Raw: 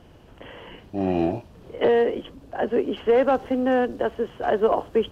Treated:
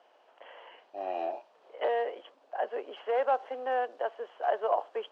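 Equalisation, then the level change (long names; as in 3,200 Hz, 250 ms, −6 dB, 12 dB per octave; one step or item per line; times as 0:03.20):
four-pole ladder high-pass 550 Hz, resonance 40%
high-frequency loss of the air 83 metres
0.0 dB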